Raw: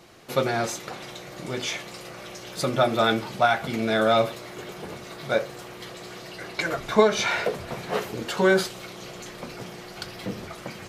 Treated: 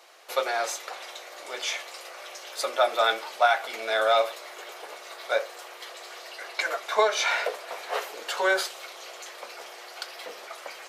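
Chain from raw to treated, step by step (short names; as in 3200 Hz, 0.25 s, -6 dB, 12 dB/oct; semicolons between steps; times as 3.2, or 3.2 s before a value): HPF 530 Hz 24 dB/oct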